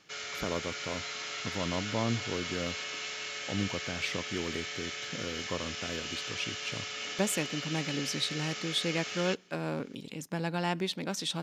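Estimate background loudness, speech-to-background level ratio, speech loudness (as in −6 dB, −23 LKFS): −36.5 LKFS, 1.0 dB, −35.5 LKFS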